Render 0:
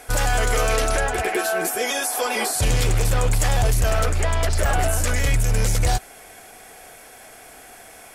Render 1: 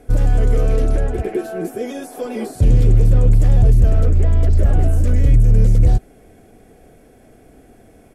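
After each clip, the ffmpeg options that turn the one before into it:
ffmpeg -i in.wav -af "firequalizer=gain_entry='entry(260,0);entry(870,-21);entry(5000,-25)':delay=0.05:min_phase=1,volume=8.5dB" out.wav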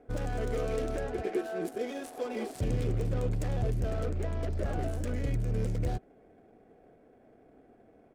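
ffmpeg -i in.wav -af "aemphasis=mode=production:type=bsi,adynamicsmooth=sensitivity=6.5:basefreq=1100,volume=-7dB" out.wav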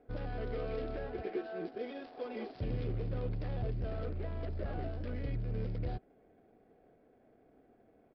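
ffmpeg -i in.wav -af "aresample=11025,aresample=44100,volume=-6dB" out.wav

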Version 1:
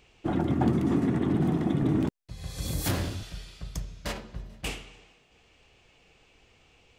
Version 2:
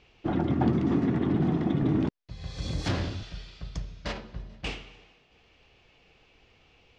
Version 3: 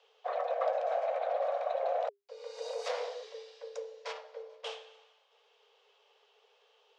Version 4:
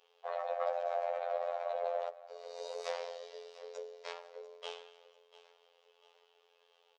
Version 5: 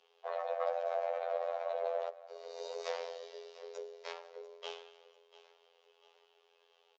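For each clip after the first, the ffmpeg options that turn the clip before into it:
ffmpeg -i in.wav -af "lowpass=frequency=5500:width=0.5412,lowpass=frequency=5500:width=1.3066" out.wav
ffmpeg -i in.wav -af "afreqshift=400,volume=-7dB" out.wav
ffmpeg -i in.wav -af "aecho=1:1:693|1386|2079|2772:0.133|0.06|0.027|0.0122,afftfilt=real='hypot(re,im)*cos(PI*b)':imag='0':win_size=2048:overlap=0.75" out.wav
ffmpeg -i in.wav -af "afreqshift=-15,aresample=16000,aresample=44100" out.wav

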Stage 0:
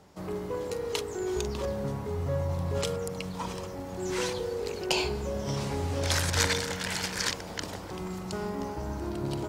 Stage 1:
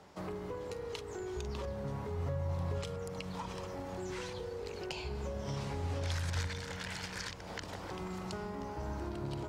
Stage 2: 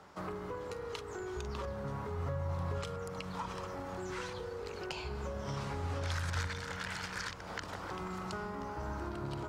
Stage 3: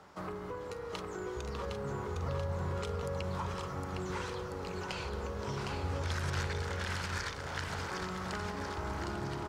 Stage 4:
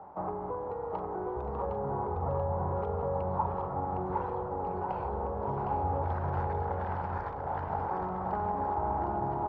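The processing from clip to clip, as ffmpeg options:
ffmpeg -i in.wav -filter_complex "[0:a]lowpass=frequency=3800:poles=1,lowshelf=frequency=450:gain=-7,acrossover=split=150[link_01][link_02];[link_02]acompressor=threshold=-42dB:ratio=10[link_03];[link_01][link_03]amix=inputs=2:normalize=0,volume=3dB" out.wav
ffmpeg -i in.wav -af "equalizer=frequency=1300:width=1.8:gain=8,volume=-1dB" out.wav
ffmpeg -i in.wav -af "aecho=1:1:760|1444|2060|2614|3112:0.631|0.398|0.251|0.158|0.1" out.wav
ffmpeg -i in.wav -af "lowpass=frequency=820:width_type=q:width=4.7,volume=1.5dB" out.wav

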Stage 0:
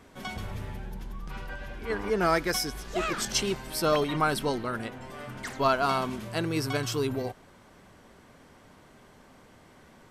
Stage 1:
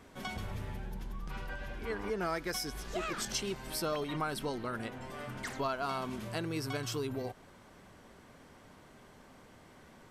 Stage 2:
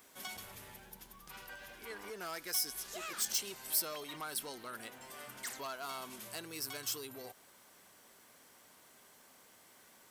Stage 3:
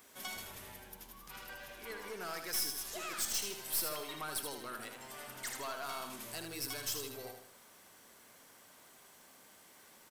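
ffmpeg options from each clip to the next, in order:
ffmpeg -i in.wav -af "acompressor=threshold=-33dB:ratio=2.5,volume=-2dB" out.wav
ffmpeg -i in.wav -af "asoftclip=type=tanh:threshold=-29dB,aemphasis=mode=production:type=riaa,volume=-6dB" out.wav
ffmpeg -i in.wav -filter_complex "[0:a]aeval=exprs='(tanh(35.5*val(0)+0.45)-tanh(0.45))/35.5':channel_layout=same,asplit=2[link_01][link_02];[link_02]aecho=0:1:78|156|234|312|390:0.473|0.199|0.0835|0.0351|0.0147[link_03];[link_01][link_03]amix=inputs=2:normalize=0,volume=2.5dB" out.wav

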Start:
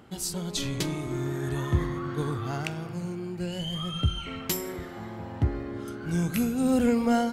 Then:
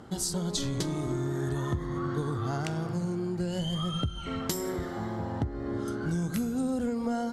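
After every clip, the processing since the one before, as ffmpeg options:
ffmpeg -i in.wav -af "lowpass=10000,equalizer=frequency=2500:width=2.4:gain=-11,acompressor=threshold=-32dB:ratio=10,volume=5dB" out.wav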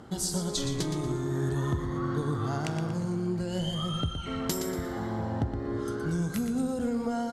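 ffmpeg -i in.wav -af "aecho=1:1:118|236|354|472:0.398|0.139|0.0488|0.0171" out.wav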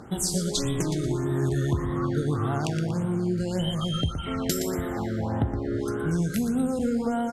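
ffmpeg -i in.wav -af "afftfilt=real='re*(1-between(b*sr/1024,860*pow(5700/860,0.5+0.5*sin(2*PI*1.7*pts/sr))/1.41,860*pow(5700/860,0.5+0.5*sin(2*PI*1.7*pts/sr))*1.41))':imag='im*(1-between(b*sr/1024,860*pow(5700/860,0.5+0.5*sin(2*PI*1.7*pts/sr))/1.41,860*pow(5700/860,0.5+0.5*sin(2*PI*1.7*pts/sr))*1.41))':win_size=1024:overlap=0.75,volume=4dB" out.wav

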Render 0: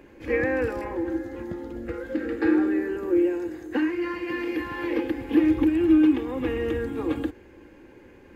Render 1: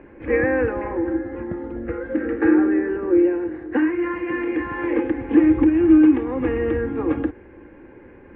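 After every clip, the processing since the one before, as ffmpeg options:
ffmpeg -i in.wav -af "lowpass=frequency=2200:width=0.5412,lowpass=frequency=2200:width=1.3066,volume=5dB" out.wav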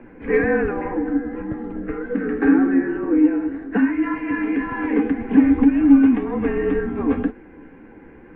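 ffmpeg -i in.wav -af "afreqshift=-39,flanger=delay=7.7:depth=6.4:regen=43:speed=1.9:shape=triangular,acontrast=30" out.wav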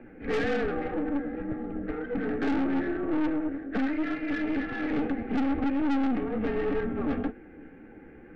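ffmpeg -i in.wav -af "aeval=exprs='(tanh(12.6*val(0)+0.5)-tanh(0.5))/12.6':channel_layout=same,asuperstop=centerf=1000:order=4:qfactor=5.7,volume=-2.5dB" out.wav

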